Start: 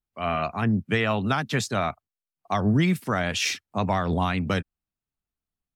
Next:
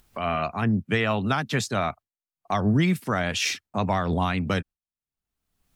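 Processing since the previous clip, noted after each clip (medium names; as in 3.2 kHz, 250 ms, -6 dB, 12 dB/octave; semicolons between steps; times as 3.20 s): gate with hold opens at -44 dBFS; upward compressor, threshold -27 dBFS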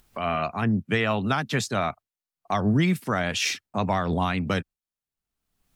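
peaking EQ 72 Hz -3 dB 0.92 oct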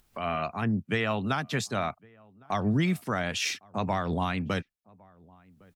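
echo from a far wall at 190 m, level -26 dB; trim -4 dB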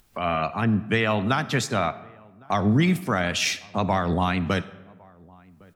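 reverberation RT60 1.1 s, pre-delay 10 ms, DRR 15 dB; trim +5.5 dB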